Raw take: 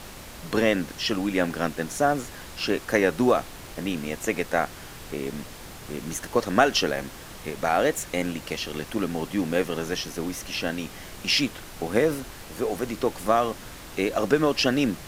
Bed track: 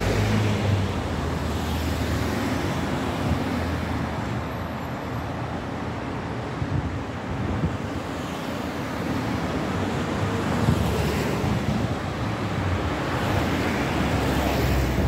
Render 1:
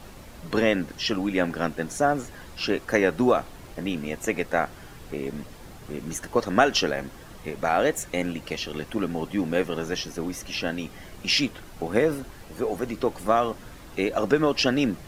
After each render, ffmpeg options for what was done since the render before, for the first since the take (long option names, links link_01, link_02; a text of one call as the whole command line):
ffmpeg -i in.wav -af "afftdn=noise_reduction=8:noise_floor=-42" out.wav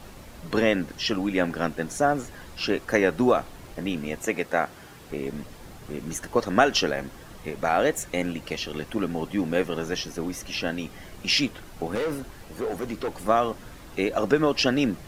ffmpeg -i in.wav -filter_complex "[0:a]asettb=1/sr,asplit=3[link_01][link_02][link_03];[link_01]atrim=end=4.224[link_04];[link_02]atrim=start=4.22:end=5.11,asetpts=PTS-STARTPTS,afade=type=in:duration=0.004:curve=qsin,afade=type=out:start_time=0.886:duration=0.004:curve=qsin,highpass=frequency=140:poles=1[link_05];[link_03]atrim=start=5.106[link_06];[link_04][link_05]acrossfade=duration=0.004:curve1=hsin:curve2=qsin[link_07];[link_07][link_06]acrossfade=duration=0.004:curve1=qsin:curve2=hsin,asettb=1/sr,asplit=3[link_08][link_09][link_10];[link_08]atrim=end=11.954[link_11];[link_09]atrim=start=11.95:end=13.27,asetpts=PTS-STARTPTS,afade=type=in:duration=0.004:curve=qsin,afade=type=out:start_time=1.316:duration=0.004:curve=qsin,asoftclip=type=hard:threshold=-24dB[link_12];[link_10]atrim=start=13.266[link_13];[link_11][link_12]acrossfade=duration=0.004:curve1=hsin:curve2=qsin[link_14];[link_14][link_13]acrossfade=duration=0.004:curve1=qsin:curve2=hsin" out.wav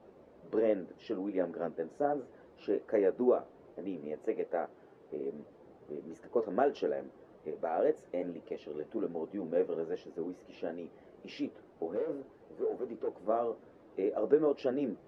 ffmpeg -i in.wav -af "bandpass=frequency=440:width_type=q:width=1.9:csg=0,flanger=delay=9.1:depth=6.6:regen=-49:speed=1.3:shape=sinusoidal" out.wav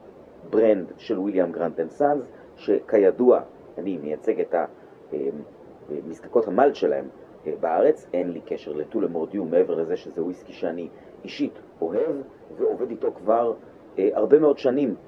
ffmpeg -i in.wav -af "volume=11dB" out.wav